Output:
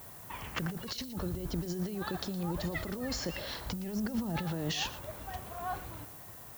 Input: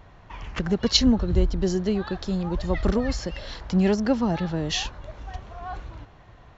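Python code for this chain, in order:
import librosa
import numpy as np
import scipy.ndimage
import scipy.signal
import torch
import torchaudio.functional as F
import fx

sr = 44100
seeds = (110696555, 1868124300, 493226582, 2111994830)

y = scipy.signal.sosfilt(scipy.signal.butter(2, 99.0, 'highpass', fs=sr, output='sos'), x)
y = fx.over_compress(y, sr, threshold_db=-30.0, ratio=-1.0)
y = y + 10.0 ** (-16.0 / 20.0) * np.pad(y, (int(116 * sr / 1000.0), 0))[:len(y)]
y = fx.dmg_noise_colour(y, sr, seeds[0], colour='violet', level_db=-44.0)
y = fx.low_shelf(y, sr, hz=150.0, db=11.0, at=(3.66, 4.4))
y = y * 10.0 ** (-6.5 / 20.0)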